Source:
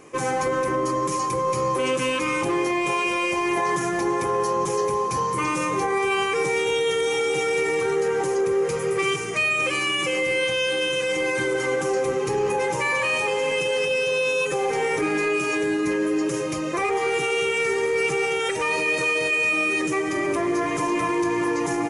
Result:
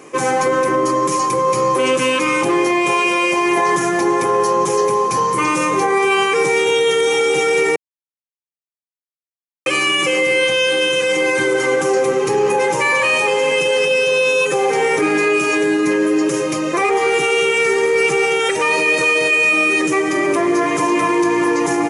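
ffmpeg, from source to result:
-filter_complex "[0:a]asplit=3[a][b][c];[a]atrim=end=7.76,asetpts=PTS-STARTPTS,afade=t=out:st=7.756:d=0.004:c=hsin[d];[b]atrim=start=7.76:end=9.66,asetpts=PTS-STARTPTS,volume=0[e];[c]atrim=start=9.66,asetpts=PTS-STARTPTS,afade=t=in:d=0.004:c=hsin[f];[d][e][f]concat=n=3:v=0:a=1,highpass=160,volume=7.5dB"

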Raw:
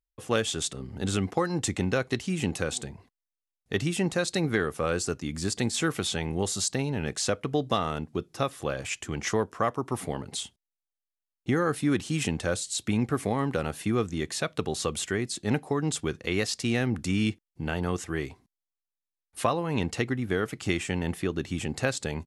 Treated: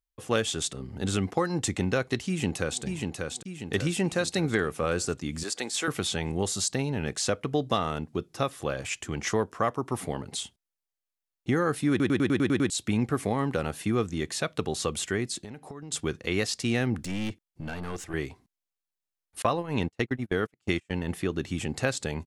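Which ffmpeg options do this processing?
-filter_complex "[0:a]asplit=2[a][b];[b]afade=t=in:st=2.27:d=0.01,afade=t=out:st=2.83:d=0.01,aecho=0:1:590|1180|1770|2360|2950|3540:0.630957|0.315479|0.157739|0.0788697|0.0394348|0.0197174[c];[a][c]amix=inputs=2:normalize=0,asettb=1/sr,asplit=3[d][e][f];[d]atrim=end=5.434[g];[e]atrim=start=5.43:end=5.88,asetpts=PTS-STARTPTS,afade=t=in:d=0.004:c=qsin,afade=t=out:st=0.446:d=0.004:c=qsin,highpass=440[h];[f]atrim=start=5.876[i];[g][h]acrossfade=d=0.004:c1=hsin:c2=qsin[j];[j][i]acrossfade=d=0.004:c1=qsin:c2=hsin,asettb=1/sr,asplit=3[k][l][m];[k]atrim=end=15.444[n];[l]atrim=start=15.44:end=15.92,asetpts=PTS-STARTPTS,afade=t=in:d=0.004:c=qsin,afade=t=out:st=0.476:d=0.004:c=qsin,acompressor=threshold=-37dB:ratio=16:attack=3.2:release=140:knee=1:detection=peak[o];[m]atrim=start=15.916[p];[n][o]acrossfade=d=0.004:c1=hsin:c2=qsin[q];[q][p]acrossfade=d=0.004:c1=qsin:c2=hsin,asettb=1/sr,asplit=3[r][s][t];[r]atrim=end=17.044[u];[s]atrim=start=17.04:end=18.14,asetpts=PTS-STARTPTS,afade=t=in:d=0.004:c=qsin,afade=t=out:st=1.096:d=0.004:c=qsin,aeval=exprs='(tanh(25.1*val(0)+0.5)-tanh(0.5))/25.1':c=same[v];[t]atrim=start=18.136[w];[u][v]acrossfade=d=0.004:c1=hsin:c2=qsin[x];[x][w]acrossfade=d=0.004:c1=qsin:c2=hsin,asettb=1/sr,asplit=3[y][z][aa];[y]atrim=end=19.424[ab];[z]atrim=start=19.42:end=21.11,asetpts=PTS-STARTPTS,afade=t=in:d=0.004:c=qsin,afade=t=out:st=1.686:d=0.004:c=qsin,agate=range=-36dB:threshold=-30dB:ratio=16:release=100:detection=peak[ac];[aa]atrim=start=21.106[ad];[ab][ac]acrossfade=d=0.004:c1=hsin:c2=qsin[ae];[ae][ad]acrossfade=d=0.004:c1=qsin:c2=hsin,asplit=9[af][ag][ah][ai][aj][ak][al][am][an];[af]atrim=end=12.002[ao];[ag]atrim=start=11.898:end=12.002[ap];[ah]atrim=start=11.898:end=12.002[aq];[ai]atrim=start=11.898:end=12.002[ar];[aj]atrim=start=11.898:end=12.002[as];[ak]atrim=start=11.898:end=12.002[at];[al]atrim=start=11.898:end=12.002[au];[am]atrim=start=11.898:end=12.002[av];[an]atrim=start=12.698[aw];[ao][ap]acrossfade=d=0.004:c1=hsin:c2=hsin[ax];[ax][aq]acrossfade=d=0.004:c1=hsin:c2=hsin[ay];[ay][ar]acrossfade=d=0.004:c1=hsin:c2=hsin[az];[az][as]acrossfade=d=0.004:c1=hsin:c2=hsin[ba];[ba][at]acrossfade=d=0.004:c1=hsin:c2=hsin[bb];[bb][au]acrossfade=d=0.004:c1=hsin:c2=hsin[bc];[bc][av]acrossfade=d=0.004:c1=hsin:c2=hsin[bd];[bd][aw]acrossfade=d=0.004:c1=hsin:c2=hsin"

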